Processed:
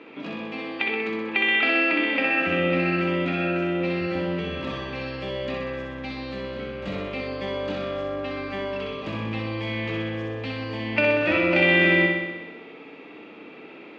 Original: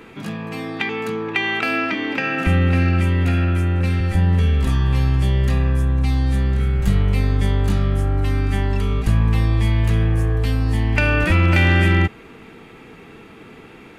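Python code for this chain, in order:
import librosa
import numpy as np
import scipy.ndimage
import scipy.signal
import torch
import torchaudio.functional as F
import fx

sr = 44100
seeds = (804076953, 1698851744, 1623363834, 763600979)

y = fx.cabinet(x, sr, low_hz=280.0, low_slope=12, high_hz=4400.0, hz=(290.0, 580.0, 1600.0, 2500.0), db=(8, 8, -4, 5))
y = fx.room_flutter(y, sr, wall_m=10.8, rt60_s=1.1)
y = y * 10.0 ** (-5.0 / 20.0)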